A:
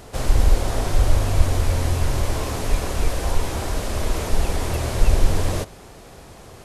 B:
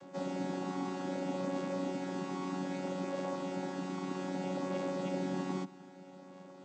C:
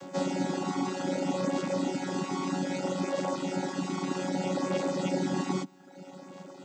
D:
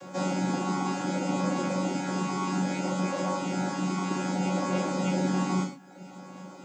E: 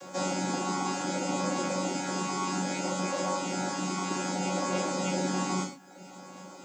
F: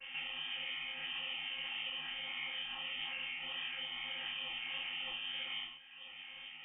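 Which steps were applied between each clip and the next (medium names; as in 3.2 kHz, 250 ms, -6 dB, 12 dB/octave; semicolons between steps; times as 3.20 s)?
vocoder on a held chord bare fifth, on F#3; trim -8 dB
reverb removal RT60 0.85 s; treble shelf 4.7 kHz +8 dB; trim +8.5 dB
gated-style reverb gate 160 ms falling, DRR -4 dB; trim -2.5 dB
tone controls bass -7 dB, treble +6 dB
compression, threshold -35 dBFS, peak gain reduction 9.5 dB; frequency inversion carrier 3.3 kHz; detune thickener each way 57 cents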